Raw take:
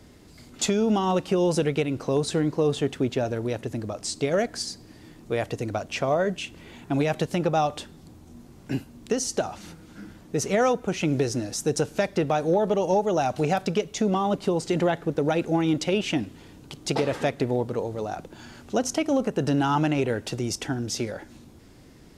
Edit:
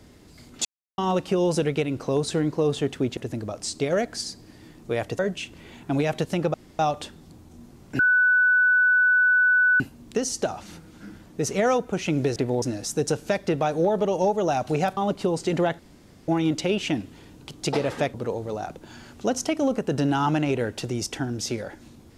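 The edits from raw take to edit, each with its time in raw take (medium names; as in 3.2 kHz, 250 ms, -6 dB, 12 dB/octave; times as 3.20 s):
0.65–0.98 s: mute
3.17–3.58 s: delete
5.60–6.20 s: delete
7.55 s: insert room tone 0.25 s
8.75 s: add tone 1.49 kHz -15.5 dBFS 1.81 s
13.66–14.20 s: delete
15.02–15.51 s: room tone
17.37–17.63 s: move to 11.31 s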